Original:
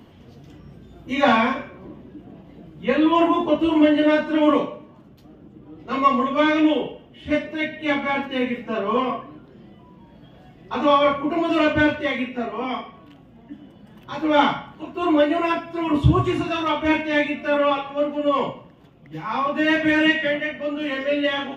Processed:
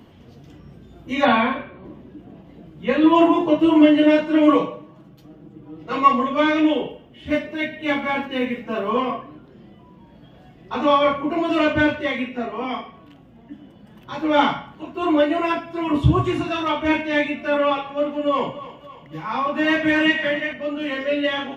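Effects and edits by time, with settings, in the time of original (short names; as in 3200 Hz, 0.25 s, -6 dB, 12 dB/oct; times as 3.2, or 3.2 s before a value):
1.25–1.85 brick-wall FIR low-pass 4600 Hz
3.03–6.13 comb 6.2 ms
6.9–8.9 short-mantissa float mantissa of 6-bit
17.78–20.53 thinning echo 0.28 s, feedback 61%, level -14 dB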